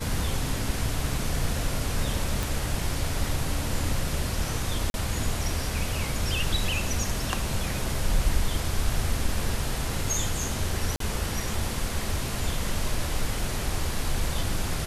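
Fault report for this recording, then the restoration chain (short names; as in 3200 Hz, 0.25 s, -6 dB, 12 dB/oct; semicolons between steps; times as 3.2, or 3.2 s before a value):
2.43 pop
4.9–4.94 gap 41 ms
10.96–11 gap 43 ms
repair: de-click; interpolate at 4.9, 41 ms; interpolate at 10.96, 43 ms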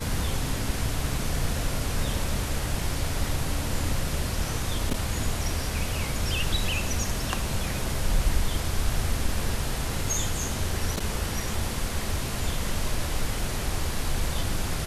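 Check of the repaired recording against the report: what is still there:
none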